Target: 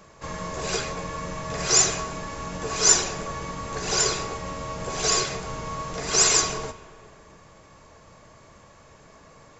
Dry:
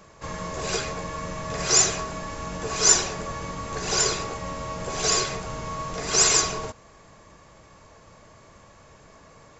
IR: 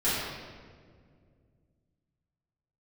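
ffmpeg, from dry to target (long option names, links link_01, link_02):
-filter_complex "[0:a]bandreject=frequency=50:width_type=h:width=6,bandreject=frequency=100:width_type=h:width=6,asplit=2[link_01][link_02];[1:a]atrim=start_sample=2205,asetrate=29547,aresample=44100,adelay=112[link_03];[link_02][link_03]afir=irnorm=-1:irlink=0,volume=-32.5dB[link_04];[link_01][link_04]amix=inputs=2:normalize=0"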